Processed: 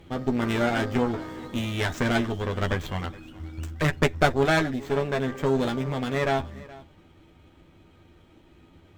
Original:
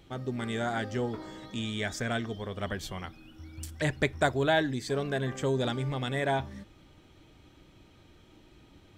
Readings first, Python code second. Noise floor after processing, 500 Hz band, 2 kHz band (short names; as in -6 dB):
-56 dBFS, +5.0 dB, +4.5 dB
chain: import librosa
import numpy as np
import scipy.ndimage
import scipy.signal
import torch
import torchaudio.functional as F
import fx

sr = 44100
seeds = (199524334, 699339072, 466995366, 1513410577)

p1 = scipy.ndimage.median_filter(x, 9, mode='constant')
p2 = fx.peak_eq(p1, sr, hz=10000.0, db=-12.5, octaves=0.22)
p3 = fx.rider(p2, sr, range_db=4, speed_s=2.0)
p4 = fx.cheby_harmonics(p3, sr, harmonics=(4, 6, 8), levels_db=(-8, -16, -21), full_scale_db=-13.0)
p5 = fx.doubler(p4, sr, ms=12.0, db=-6.0)
p6 = p5 + fx.echo_single(p5, sr, ms=421, db=-20.5, dry=0)
y = F.gain(torch.from_numpy(p6), 3.5).numpy()